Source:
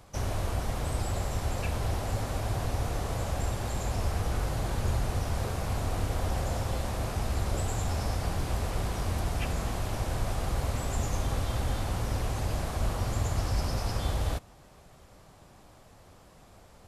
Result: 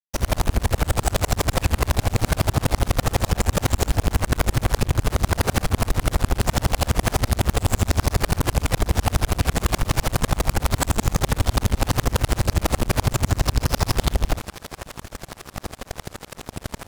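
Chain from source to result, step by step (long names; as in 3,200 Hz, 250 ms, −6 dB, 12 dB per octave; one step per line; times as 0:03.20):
fade in at the beginning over 0.51 s
fuzz pedal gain 51 dB, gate −52 dBFS
low-shelf EQ 200 Hz +3.5 dB
on a send: feedback echo with a high-pass in the loop 868 ms, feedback 67%, level −19 dB
on the sum: tremolo with a ramp in dB swelling 12 Hz, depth 35 dB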